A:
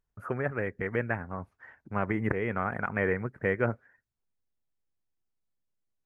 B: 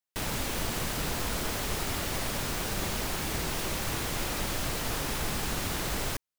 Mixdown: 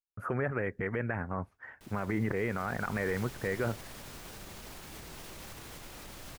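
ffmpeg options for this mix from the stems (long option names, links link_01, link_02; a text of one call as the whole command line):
ffmpeg -i stem1.wav -i stem2.wav -filter_complex "[0:a]agate=range=-33dB:threshold=-54dB:ratio=3:detection=peak,alimiter=limit=-24dB:level=0:latency=1:release=41,volume=3dB[link_01];[1:a]alimiter=level_in=2.5dB:limit=-24dB:level=0:latency=1:release=100,volume=-2.5dB,adelay=1650,volume=-10dB,afade=type=in:start_time=2.39:duration=0.79:silence=0.334965[link_02];[link_01][link_02]amix=inputs=2:normalize=0" out.wav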